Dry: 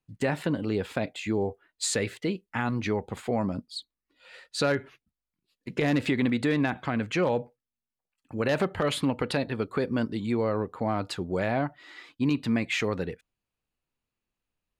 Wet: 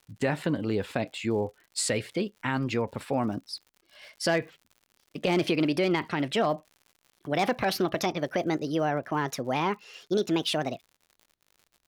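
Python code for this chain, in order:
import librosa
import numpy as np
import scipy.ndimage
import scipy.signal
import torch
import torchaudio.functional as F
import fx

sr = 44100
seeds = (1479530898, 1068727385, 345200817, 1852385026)

y = fx.speed_glide(x, sr, from_pct=99, to_pct=150)
y = fx.dmg_crackle(y, sr, seeds[0], per_s=100.0, level_db=-45.0)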